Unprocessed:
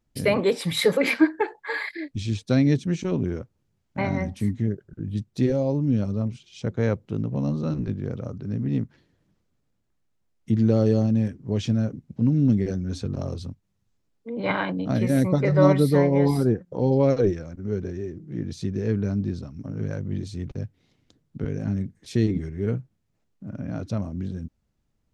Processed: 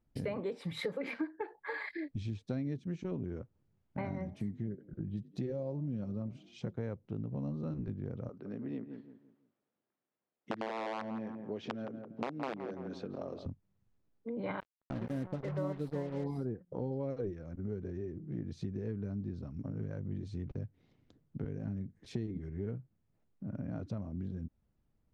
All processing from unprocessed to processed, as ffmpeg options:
ffmpeg -i in.wav -filter_complex "[0:a]asettb=1/sr,asplit=3[link_01][link_02][link_03];[link_01]atrim=end=4.144[link_04];[link_02]atrim=start=4.14:end=6.73,asetpts=PTS-STARTPTS,afade=type=in:duration=0.004:curve=qsin,afade=type=out:start_time=2.586:duration=0.004:curve=qsin,highpass=41,aecho=1:1:5.6:0.31,atrim=end_sample=114219,asplit=4[link_05][link_06][link_07][link_08];[link_06]adelay=89,afreqshift=43,volume=-23dB[link_09];[link_07]adelay=178,afreqshift=86,volume=-30.7dB[link_10];[link_08]adelay=267,afreqshift=129,volume=-38.5dB[link_11];[link_05][link_09][link_10][link_11]amix=inputs=4:normalize=0,atrim=end_sample=114219[link_12];[link_03]atrim=start=6.726[link_13];[link_04][link_12]acrossfade=duration=0.004:curve1=hsin:curve2=qsin[link_14];[link_14][link_13]acrossfade=duration=0.004:curve1=qsin:curve2=hsin,asettb=1/sr,asplit=3[link_15][link_16][link_17];[link_15]atrim=end=8.294[link_18];[link_16]atrim=start=8.29:end=13.46,asetpts=PTS-STARTPTS,afade=type=in:duration=0.004:curve=qsin,afade=type=out:start_time=5.166:duration=0.004:curve=qsin,aeval=exprs='(mod(4.22*val(0)+1,2)-1)/4.22':channel_layout=same,highpass=350,lowpass=4700,asplit=2[link_19][link_20];[link_20]adelay=168,lowpass=frequency=1500:poles=1,volume=-10.5dB,asplit=2[link_21][link_22];[link_22]adelay=168,lowpass=frequency=1500:poles=1,volume=0.35,asplit=2[link_23][link_24];[link_24]adelay=168,lowpass=frequency=1500:poles=1,volume=0.35,asplit=2[link_25][link_26];[link_26]adelay=168,lowpass=frequency=1500:poles=1,volume=0.35[link_27];[link_19][link_21][link_23][link_25][link_27]amix=inputs=5:normalize=0,atrim=end_sample=227997[link_28];[link_17]atrim=start=13.456[link_29];[link_18][link_28]acrossfade=duration=0.004:curve1=hsin:curve2=qsin[link_30];[link_30][link_29]acrossfade=duration=0.004:curve1=qsin:curve2=hsin,asettb=1/sr,asplit=3[link_31][link_32][link_33];[link_31]atrim=end=14.604[link_34];[link_32]atrim=start=14.6:end=16.24,asetpts=PTS-STARTPTS,afade=type=in:duration=0.004:curve=qsin,afade=type=out:start_time=1.636:duration=0.004:curve=qsin,asuperstop=centerf=2400:order=12:qfactor=5.1,agate=range=-33dB:threshold=-17dB:ratio=3:release=100:detection=peak,acrusher=bits=4:mix=0:aa=0.5[link_35];[link_33]atrim=start=16.236[link_36];[link_34][link_35]acrossfade=duration=0.004:curve1=hsin:curve2=qsin[link_37];[link_37][link_36]acrossfade=duration=0.004:curve1=qsin:curve2=hsin,lowpass=frequency=1500:poles=1,acompressor=threshold=-34dB:ratio=4,volume=-2.5dB" out.wav

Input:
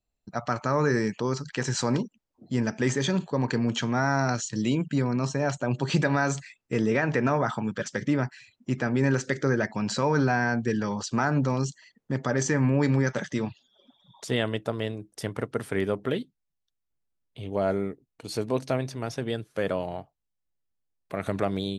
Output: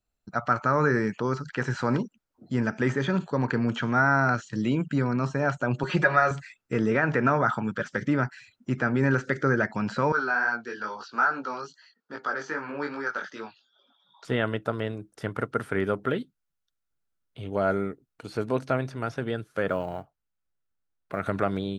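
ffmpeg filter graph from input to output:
ffmpeg -i in.wav -filter_complex "[0:a]asettb=1/sr,asplit=3[link_01][link_02][link_03];[link_01]atrim=end=5.834[link_04];[link_02]atrim=start=5.83:end=6.31,asetpts=PTS-STARTPTS,afade=type=in:duration=0.004:curve=qsin,afade=type=out:start_time=0.476:duration=0.004:curve=qsin,equalizer=frequency=82:width_type=o:width=2.9:gain=-10.5,aecho=1:1:5.5:0.95,atrim=end_sample=21168[link_05];[link_03]atrim=start=6.306[link_06];[link_04][link_05]acrossfade=duration=0.004:curve1=hsin:curve2=qsin[link_07];[link_07][link_06]acrossfade=duration=0.004:curve1=qsin:curve2=hsin,asettb=1/sr,asplit=3[link_08][link_09][link_10];[link_08]atrim=end=10.124[link_11];[link_09]atrim=start=10.12:end=14.25,asetpts=PTS-STARTPTS,afade=type=in:duration=0.004:curve=qsin,afade=type=out:start_time=4.126:duration=0.004:curve=qsin,flanger=delay=17.5:depth=3.5:speed=2.4,highpass=460,equalizer=frequency=580:width_type=q:width=4:gain=-4,equalizer=frequency=1400:width_type=q:width=4:gain=5,equalizer=frequency=2000:width_type=q:width=4:gain=-5,equalizer=frequency=4500:width_type=q:width=4:gain=6,lowpass=frequency=5900:width=0.5412,lowpass=frequency=5900:width=1.3066[link_12];[link_10]atrim=start=14.246[link_13];[link_11][link_12]acrossfade=duration=0.004:curve1=hsin:curve2=qsin[link_14];[link_14][link_13]acrossfade=duration=0.004:curve1=qsin:curve2=hsin,asettb=1/sr,asplit=3[link_15][link_16][link_17];[link_15]atrim=end=19.694[link_18];[link_16]atrim=start=19.69:end=21.26,asetpts=PTS-STARTPTS,afade=type=in:duration=0.004:curve=qsin,afade=type=out:start_time=1.566:duration=0.004:curve=qsin,lowpass=frequency=3500:poles=1,acrusher=bits=9:mode=log:mix=0:aa=0.000001[link_19];[link_17]atrim=start=21.256[link_20];[link_18][link_19]acrossfade=duration=0.004:curve1=hsin:curve2=qsin[link_21];[link_21][link_20]acrossfade=duration=0.004:curve1=qsin:curve2=hsin,acrossover=split=3000[link_22][link_23];[link_23]acompressor=threshold=-51dB:ratio=4:attack=1:release=60[link_24];[link_22][link_24]amix=inputs=2:normalize=0,equalizer=frequency=1400:width_type=o:width=0.38:gain=9.5" out.wav

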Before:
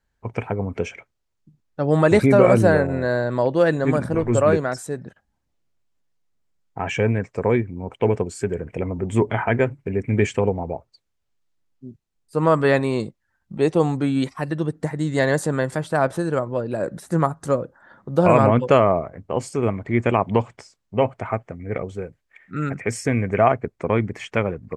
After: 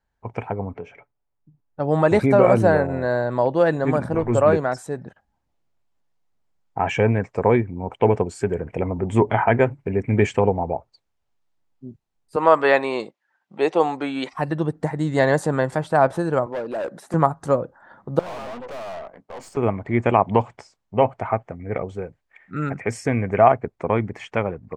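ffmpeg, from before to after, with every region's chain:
ffmpeg -i in.wav -filter_complex "[0:a]asettb=1/sr,asplit=3[link_01][link_02][link_03];[link_01]atrim=end=0.734[link_04];[link_02]atrim=start=0.73:end=1.8,asetpts=PTS-STARTPTS,afade=type=in:duration=0.004:curve=qsin,afade=type=out:start_time=1.066:duration=0.004:curve=qsin,lowpass=frequency=1400:poles=1,aecho=1:1:6.9:0.43,atrim=end_sample=47187,acompressor=threshold=-33dB:ratio=2:attack=3.2:release=140:knee=1:detection=peak[link_05];[link_03]atrim=start=1.796[link_06];[link_04][link_05]acrossfade=duration=0.004:curve1=hsin:curve2=qsin[link_07];[link_07][link_06]acrossfade=duration=0.004:curve1=qsin:curve2=hsin,asettb=1/sr,asplit=3[link_08][link_09][link_10];[link_08]atrim=end=12.364[link_11];[link_09]atrim=start=12.36:end=14.33,asetpts=PTS-STARTPTS,afade=type=in:duration=0.004:curve=qsin,afade=type=out:start_time=1.966:duration=0.004:curve=qsin,highpass=380,lowpass=7800,equalizer=frequency=2600:width=1.1:gain=4.5[link_12];[link_10]atrim=start=14.326[link_13];[link_11][link_12]acrossfade=duration=0.004:curve1=hsin:curve2=qsin[link_14];[link_14][link_13]acrossfade=duration=0.004:curve1=qsin:curve2=hsin,asettb=1/sr,asplit=3[link_15][link_16][link_17];[link_15]atrim=end=16.464[link_18];[link_16]atrim=start=16.46:end=17.14,asetpts=PTS-STARTPTS,afade=type=in:duration=0.004:curve=qsin,afade=type=out:start_time=0.676:duration=0.004:curve=qsin,highpass=270,asoftclip=type=hard:threshold=-25.5dB[link_19];[link_17]atrim=start=17.136[link_20];[link_18][link_19]acrossfade=duration=0.004:curve1=hsin:curve2=qsin[link_21];[link_21][link_20]acrossfade=duration=0.004:curve1=qsin:curve2=hsin,asettb=1/sr,asplit=3[link_22][link_23][link_24];[link_22]atrim=end=18.194[link_25];[link_23]atrim=start=18.19:end=19.57,asetpts=PTS-STARTPTS,afade=type=in:duration=0.004:curve=qsin,afade=type=out:start_time=1.376:duration=0.004:curve=qsin,highpass=frequency=160:width=0.5412,highpass=frequency=160:width=1.3066,lowshelf=frequency=310:gain=-8.5,aeval=exprs='(tanh(50.1*val(0)+0.55)-tanh(0.55))/50.1':channel_layout=same[link_26];[link_24]atrim=start=19.566[link_27];[link_25][link_26]acrossfade=duration=0.004:curve1=hsin:curve2=qsin[link_28];[link_28][link_27]acrossfade=duration=0.004:curve1=qsin:curve2=hsin,highshelf=frequency=6000:gain=-7,dynaudnorm=framelen=980:gausssize=5:maxgain=11.5dB,equalizer=frequency=820:width=1.8:gain=6.5,volume=-3.5dB" out.wav

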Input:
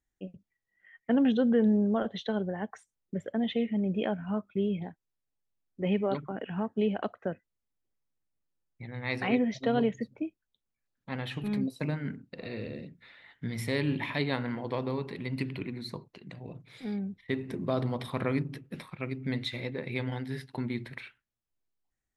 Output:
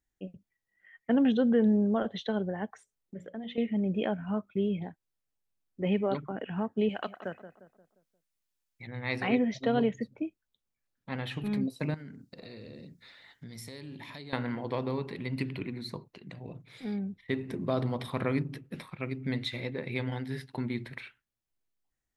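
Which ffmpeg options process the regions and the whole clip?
ffmpeg -i in.wav -filter_complex "[0:a]asettb=1/sr,asplit=3[link_01][link_02][link_03];[link_01]atrim=end=2.704[link_04];[link_02]atrim=start=2.7:end=3.58,asetpts=PTS-STARTPTS,afade=type=in:duration=0.004:curve=qsin,afade=type=out:start_time=0.876:duration=0.004:curve=qsin,acompressor=threshold=-50dB:ratio=1.5:attack=3.2:release=140:knee=1:detection=peak,bandreject=frequency=60:width_type=h:width=6,bandreject=frequency=120:width_type=h:width=6,bandreject=frequency=180:width_type=h:width=6,bandreject=frequency=240:width_type=h:width=6,bandreject=frequency=300:width_type=h:width=6,bandreject=frequency=360:width_type=h:width=6,bandreject=frequency=420:width_type=h:width=6,bandreject=frequency=480:width_type=h:width=6,bandreject=frequency=540:width_type=h:width=6,bandreject=frequency=600:width_type=h:width=6[link_05];[link_03]atrim=start=3.576[link_06];[link_04][link_05]acrossfade=duration=0.004:curve1=hsin:curve2=qsin[link_07];[link_07][link_06]acrossfade=duration=0.004:curve1=qsin:curve2=hsin,asettb=1/sr,asplit=3[link_08][link_09][link_10];[link_08]atrim=end=6.894[link_11];[link_09]atrim=start=6.89:end=8.87,asetpts=PTS-STARTPTS,afade=type=in:duration=0.004:curve=qsin,afade=type=out:start_time=1.976:duration=0.004:curve=qsin,tiltshelf=frequency=1100:gain=-7,asplit=2[link_12][link_13];[link_13]adelay=176,lowpass=frequency=1700:poles=1,volume=-11dB,asplit=2[link_14][link_15];[link_15]adelay=176,lowpass=frequency=1700:poles=1,volume=0.45,asplit=2[link_16][link_17];[link_17]adelay=176,lowpass=frequency=1700:poles=1,volume=0.45,asplit=2[link_18][link_19];[link_19]adelay=176,lowpass=frequency=1700:poles=1,volume=0.45,asplit=2[link_20][link_21];[link_21]adelay=176,lowpass=frequency=1700:poles=1,volume=0.45[link_22];[link_12][link_14][link_16][link_18][link_20][link_22]amix=inputs=6:normalize=0,atrim=end_sample=87318[link_23];[link_10]atrim=start=8.866[link_24];[link_11][link_23]acrossfade=duration=0.004:curve1=hsin:curve2=qsin[link_25];[link_25][link_24]acrossfade=duration=0.004:curve1=qsin:curve2=hsin,asettb=1/sr,asplit=3[link_26][link_27][link_28];[link_26]atrim=end=11.944[link_29];[link_27]atrim=start=11.94:end=14.33,asetpts=PTS-STARTPTS,afade=type=in:duration=0.004:curve=qsin,afade=type=out:start_time=2.386:duration=0.004:curve=qsin,highshelf=frequency=3700:width_type=q:width=1.5:gain=8.5,acompressor=threshold=-43dB:ratio=4:attack=3.2:release=140:knee=1:detection=peak[link_30];[link_28]atrim=start=14.326[link_31];[link_29][link_30]acrossfade=duration=0.004:curve1=hsin:curve2=qsin[link_32];[link_32][link_31]acrossfade=duration=0.004:curve1=qsin:curve2=hsin" out.wav

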